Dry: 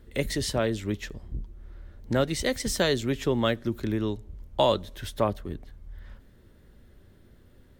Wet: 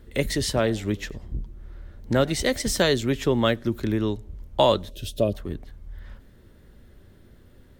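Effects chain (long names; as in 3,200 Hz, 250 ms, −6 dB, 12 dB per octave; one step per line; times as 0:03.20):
0:00.49–0:02.82: echo with shifted repeats 94 ms, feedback 31%, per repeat +82 Hz, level −24 dB
0:04.91–0:05.33: gain on a spectral selection 700–2,400 Hz −18 dB
level +3.5 dB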